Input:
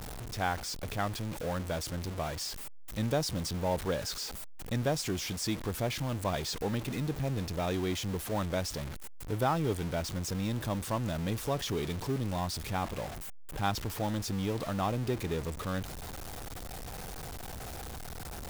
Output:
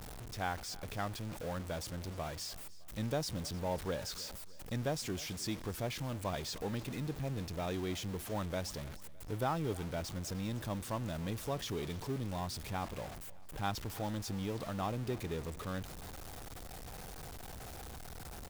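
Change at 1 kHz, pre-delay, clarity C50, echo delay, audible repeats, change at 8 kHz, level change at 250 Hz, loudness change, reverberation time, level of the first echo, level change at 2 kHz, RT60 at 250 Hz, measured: −5.5 dB, no reverb audible, no reverb audible, 306 ms, 3, −5.5 dB, −5.5 dB, −5.5 dB, no reverb audible, −20.0 dB, −5.5 dB, no reverb audible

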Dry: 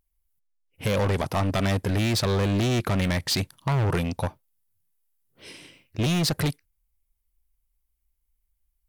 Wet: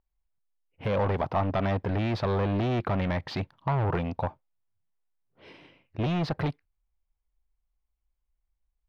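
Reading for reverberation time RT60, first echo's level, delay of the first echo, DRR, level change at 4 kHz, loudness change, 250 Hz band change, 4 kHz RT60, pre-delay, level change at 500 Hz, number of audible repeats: no reverb audible, no echo audible, no echo audible, no reverb audible, −12.5 dB, −3.5 dB, −4.0 dB, no reverb audible, no reverb audible, −1.5 dB, no echo audible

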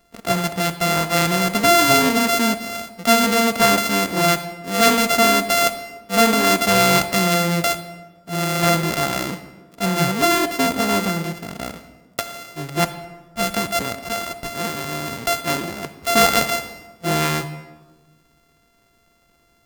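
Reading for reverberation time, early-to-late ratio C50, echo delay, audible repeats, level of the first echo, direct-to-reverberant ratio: 1.3 s, 12.0 dB, no echo audible, no echo audible, no echo audible, 11.0 dB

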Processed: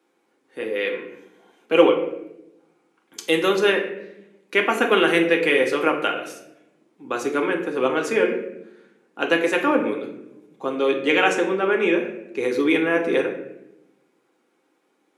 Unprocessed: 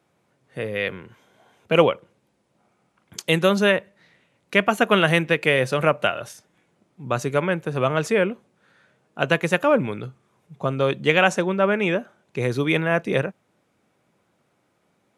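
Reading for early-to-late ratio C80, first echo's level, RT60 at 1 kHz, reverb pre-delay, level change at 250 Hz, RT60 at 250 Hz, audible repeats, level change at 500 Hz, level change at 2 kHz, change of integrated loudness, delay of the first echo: 10.5 dB, no echo audible, 0.75 s, 4 ms, +1.5 dB, 1.3 s, no echo audible, +1.5 dB, +0.5 dB, +0.5 dB, no echo audible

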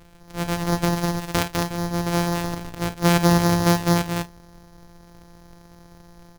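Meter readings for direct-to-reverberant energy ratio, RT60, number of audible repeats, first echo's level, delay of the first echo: no reverb audible, no reverb audible, 3, −12.5 dB, 51 ms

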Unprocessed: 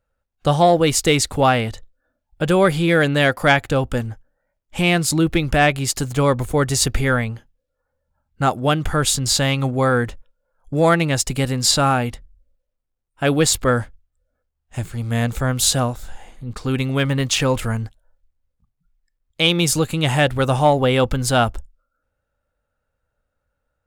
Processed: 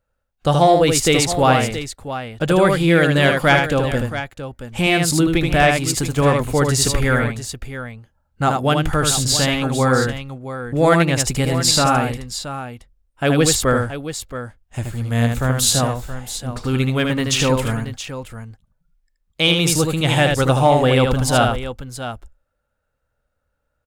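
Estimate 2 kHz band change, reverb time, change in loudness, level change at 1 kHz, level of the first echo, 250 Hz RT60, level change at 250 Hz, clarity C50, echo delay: +1.5 dB, no reverb audible, +1.0 dB, +1.5 dB, −4.5 dB, no reverb audible, +1.5 dB, no reverb audible, 77 ms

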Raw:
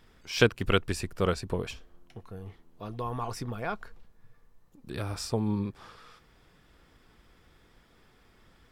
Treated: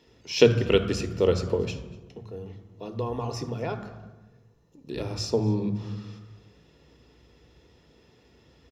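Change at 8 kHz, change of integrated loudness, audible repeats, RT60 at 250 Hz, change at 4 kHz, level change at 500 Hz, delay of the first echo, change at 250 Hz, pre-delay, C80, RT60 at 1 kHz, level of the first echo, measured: +2.0 dB, +4.5 dB, 1, 1.5 s, +2.5 dB, +7.5 dB, 241 ms, +4.0 dB, 3 ms, 13.0 dB, 1.1 s, −23.5 dB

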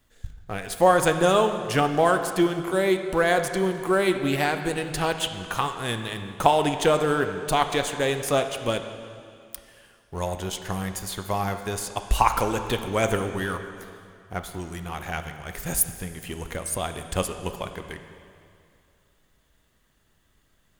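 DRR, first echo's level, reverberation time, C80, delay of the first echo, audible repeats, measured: 7.0 dB, no echo audible, 2.4 s, 9.0 dB, no echo audible, no echo audible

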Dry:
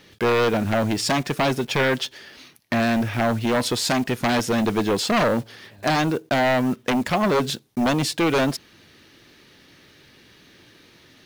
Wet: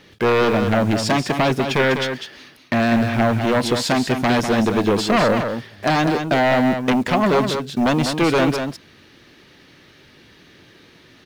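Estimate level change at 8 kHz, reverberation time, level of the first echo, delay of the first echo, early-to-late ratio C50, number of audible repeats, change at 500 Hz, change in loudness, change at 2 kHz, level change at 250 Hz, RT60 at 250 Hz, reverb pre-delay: −1.0 dB, no reverb audible, −7.0 dB, 199 ms, no reverb audible, 1, +3.5 dB, +3.5 dB, +3.0 dB, +4.0 dB, no reverb audible, no reverb audible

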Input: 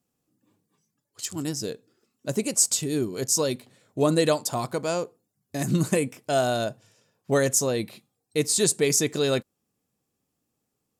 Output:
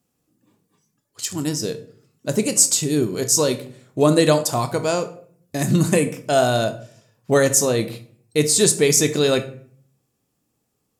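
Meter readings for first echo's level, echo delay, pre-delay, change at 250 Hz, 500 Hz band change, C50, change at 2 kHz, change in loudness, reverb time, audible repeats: no echo audible, no echo audible, 24 ms, +6.0 dB, +6.0 dB, 13.5 dB, +6.0 dB, +6.0 dB, 0.50 s, no echo audible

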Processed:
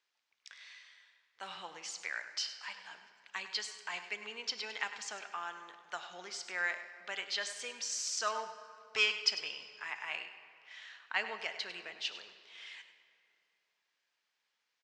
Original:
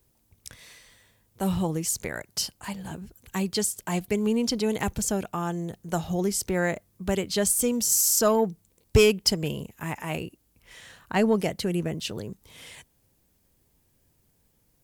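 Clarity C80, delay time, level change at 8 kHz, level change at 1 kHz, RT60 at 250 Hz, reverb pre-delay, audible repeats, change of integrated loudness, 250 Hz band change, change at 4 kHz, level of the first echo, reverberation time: 9.0 dB, 100 ms, −15.5 dB, −9.0 dB, 2.7 s, 6 ms, 1, −11.5 dB, −34.0 dB, −4.5 dB, −12.5 dB, 2.6 s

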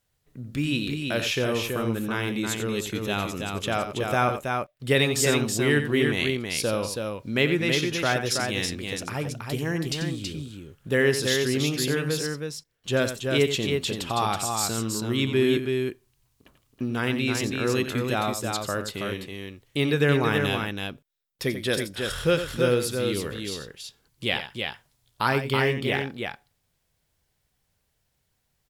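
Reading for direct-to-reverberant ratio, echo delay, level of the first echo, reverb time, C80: no reverb audible, 89 ms, −10.0 dB, no reverb audible, no reverb audible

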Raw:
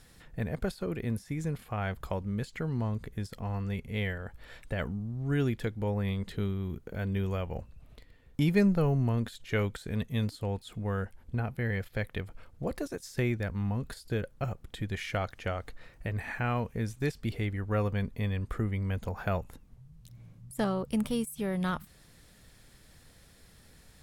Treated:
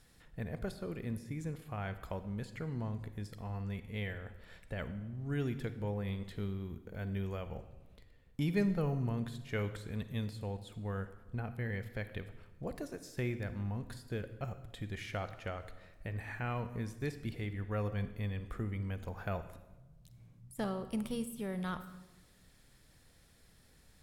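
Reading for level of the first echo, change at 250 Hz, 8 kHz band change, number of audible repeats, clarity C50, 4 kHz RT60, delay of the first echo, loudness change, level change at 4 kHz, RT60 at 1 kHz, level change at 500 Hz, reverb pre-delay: no echo audible, −6.5 dB, −6.5 dB, no echo audible, 12.0 dB, 0.85 s, no echo audible, −6.5 dB, −6.5 dB, 1.0 s, −6.5 dB, 36 ms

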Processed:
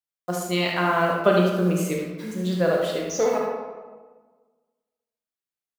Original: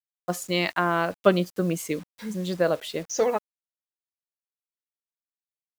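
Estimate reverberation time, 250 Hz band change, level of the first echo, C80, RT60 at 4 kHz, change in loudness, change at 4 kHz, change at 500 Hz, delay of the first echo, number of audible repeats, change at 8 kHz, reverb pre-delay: 1.4 s, +3.5 dB, −7.0 dB, 3.5 dB, 0.80 s, +3.0 dB, +1.5 dB, +3.0 dB, 73 ms, 1, +1.0 dB, 21 ms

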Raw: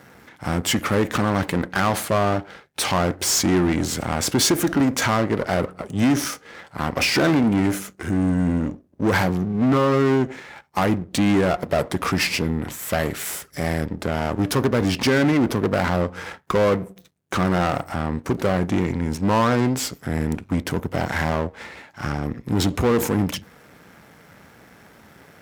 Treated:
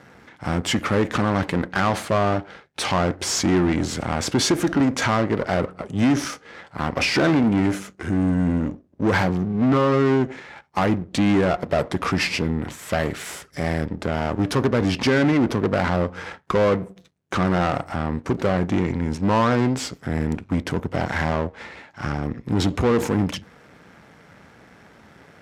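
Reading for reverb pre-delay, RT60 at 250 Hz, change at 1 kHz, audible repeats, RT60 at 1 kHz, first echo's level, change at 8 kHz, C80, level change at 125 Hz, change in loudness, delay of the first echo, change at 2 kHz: no reverb audible, no reverb audible, −0.5 dB, no echo audible, no reverb audible, no echo audible, −4.5 dB, no reverb audible, 0.0 dB, −0.5 dB, no echo audible, −0.5 dB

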